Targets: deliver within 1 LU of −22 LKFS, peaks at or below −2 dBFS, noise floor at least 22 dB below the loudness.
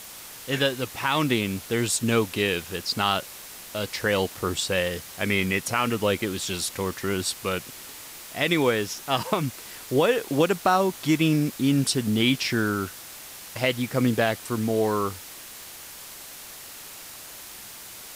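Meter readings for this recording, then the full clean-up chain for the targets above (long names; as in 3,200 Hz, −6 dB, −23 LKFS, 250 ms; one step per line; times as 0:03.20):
background noise floor −42 dBFS; target noise floor −47 dBFS; integrated loudness −25.0 LKFS; sample peak −9.0 dBFS; target loudness −22.0 LKFS
→ broadband denoise 6 dB, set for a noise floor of −42 dBFS
level +3 dB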